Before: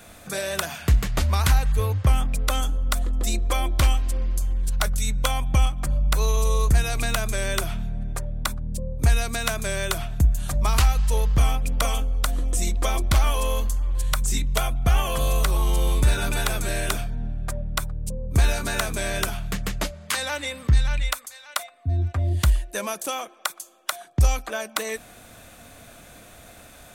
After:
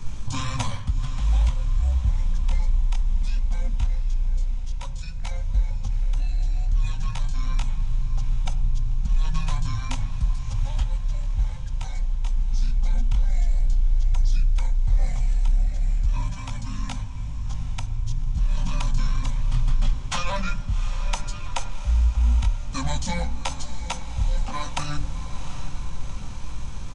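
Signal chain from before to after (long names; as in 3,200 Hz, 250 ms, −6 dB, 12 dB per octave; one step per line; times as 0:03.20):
loose part that buzzes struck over −18 dBFS, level −27 dBFS
elliptic band-stop filter 390–810 Hz, stop band 40 dB
hum removal 426.4 Hz, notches 7
background noise brown −45 dBFS
spectral tilt −2.5 dB per octave
brickwall limiter −9.5 dBFS, peak gain reduction 10.5 dB
reversed playback
downward compressor 8 to 1, threshold −25 dBFS, peak gain reduction 13 dB
reversed playback
thirty-one-band graphic EQ 160 Hz +5 dB, 1,000 Hz −8 dB, 2,500 Hz −6 dB, 5,000 Hz +8 dB, 10,000 Hz +6 dB
multi-voice chorus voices 2, 0.18 Hz, delay 17 ms, depth 4.9 ms
pitch shifter −7 semitones
feedback delay with all-pass diffusion 761 ms, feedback 58%, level −11 dB
on a send at −14.5 dB: convolution reverb RT60 1.1 s, pre-delay 3 ms
on the sum: level +8 dB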